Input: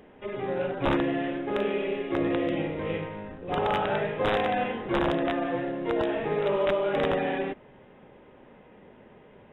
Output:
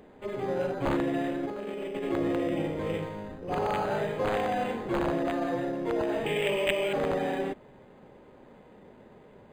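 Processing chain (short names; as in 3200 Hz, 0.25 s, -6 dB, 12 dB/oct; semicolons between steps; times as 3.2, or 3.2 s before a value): limiter -20 dBFS, peak gain reduction 3 dB; 1.43–2.12 negative-ratio compressor -34 dBFS, ratio -1; 6.26–6.93 resonant high shelf 1800 Hz +10 dB, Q 3; decimation joined by straight lines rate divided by 8×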